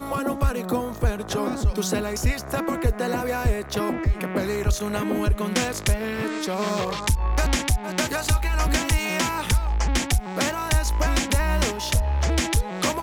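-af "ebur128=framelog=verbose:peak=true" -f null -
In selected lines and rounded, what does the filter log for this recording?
Integrated loudness:
  I:         -24.4 LUFS
  Threshold: -34.3 LUFS
Loudness range:
  LRA:         2.0 LU
  Threshold: -44.4 LUFS
  LRA low:   -25.4 LUFS
  LRA high:  -23.4 LUFS
True peak:
  Peak:      -11.3 dBFS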